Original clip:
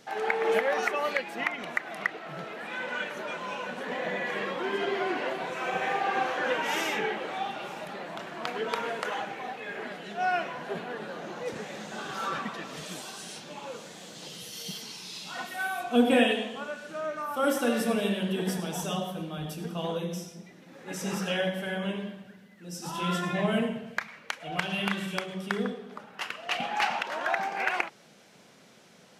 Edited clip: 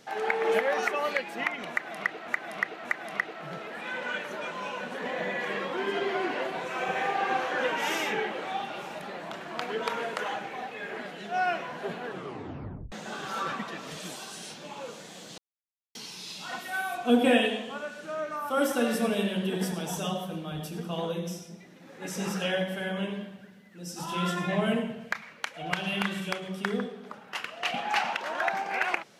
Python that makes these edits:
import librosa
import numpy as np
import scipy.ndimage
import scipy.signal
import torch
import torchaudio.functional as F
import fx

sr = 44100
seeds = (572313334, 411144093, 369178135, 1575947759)

y = fx.edit(x, sr, fx.repeat(start_s=1.71, length_s=0.57, count=3),
    fx.tape_stop(start_s=10.92, length_s=0.86),
    fx.silence(start_s=14.24, length_s=0.57), tone=tone)